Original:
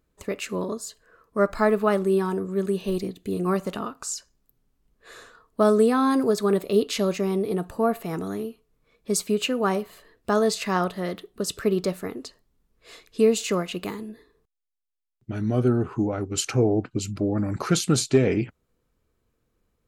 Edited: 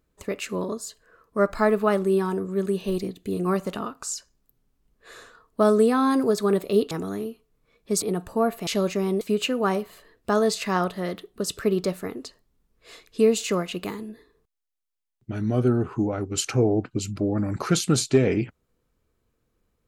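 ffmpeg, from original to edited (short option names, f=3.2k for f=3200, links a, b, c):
-filter_complex "[0:a]asplit=5[a][b][c][d][e];[a]atrim=end=6.912[f];[b]atrim=start=8.098:end=9.212[g];[c]atrim=start=7.448:end=8.102[h];[d]atrim=start=6.908:end=7.452[i];[e]atrim=start=9.208[j];[f][g]acrossfade=d=0.004:c1=hsin:c2=hsin[k];[k][h]acrossfade=d=0.004:c1=hsin:c2=hsin[l];[l][i]acrossfade=d=0.004:c1=hsin:c2=hsin[m];[m][j]acrossfade=d=0.004:c1=hsin:c2=hsin"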